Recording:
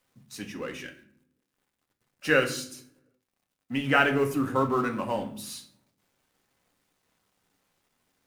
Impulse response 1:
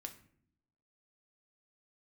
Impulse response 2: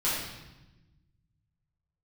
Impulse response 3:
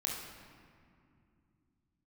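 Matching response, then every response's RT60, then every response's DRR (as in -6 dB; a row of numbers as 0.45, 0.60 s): 1; 0.65, 1.0, 2.4 s; 4.5, -10.5, -2.0 dB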